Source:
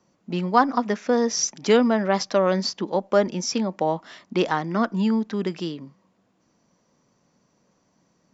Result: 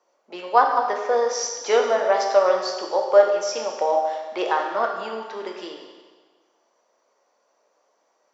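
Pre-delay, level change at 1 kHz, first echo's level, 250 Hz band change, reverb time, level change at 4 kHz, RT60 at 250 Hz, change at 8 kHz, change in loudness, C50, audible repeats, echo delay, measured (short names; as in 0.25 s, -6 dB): 8 ms, +4.0 dB, none, -15.5 dB, 1.4 s, -2.0 dB, 1.4 s, n/a, +1.5 dB, 4.0 dB, none, none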